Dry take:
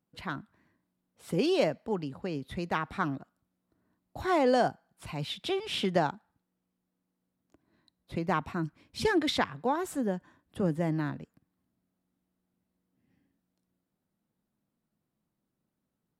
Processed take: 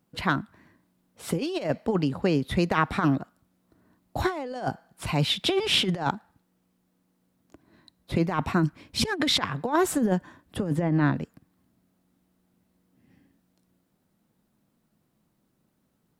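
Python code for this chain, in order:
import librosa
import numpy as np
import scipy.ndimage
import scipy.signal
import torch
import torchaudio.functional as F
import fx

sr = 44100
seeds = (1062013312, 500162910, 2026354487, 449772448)

y = fx.env_lowpass_down(x, sr, base_hz=2700.0, full_db=-25.5, at=(10.75, 11.15))
y = fx.over_compress(y, sr, threshold_db=-31.0, ratio=-0.5)
y = y * librosa.db_to_amplitude(8.0)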